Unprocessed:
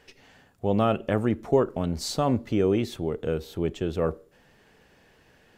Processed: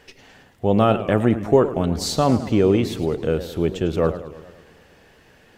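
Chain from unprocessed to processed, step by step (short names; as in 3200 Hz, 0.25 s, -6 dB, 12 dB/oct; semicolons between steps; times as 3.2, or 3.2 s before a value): warbling echo 0.109 s, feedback 60%, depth 204 cents, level -13.5 dB; gain +6 dB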